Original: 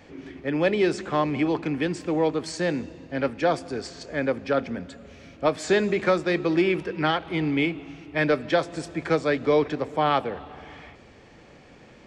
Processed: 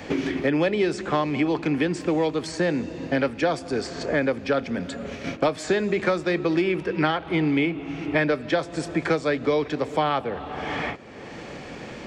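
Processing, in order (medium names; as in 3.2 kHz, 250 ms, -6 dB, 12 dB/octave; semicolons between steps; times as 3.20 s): gate -45 dBFS, range -17 dB; three bands compressed up and down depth 100%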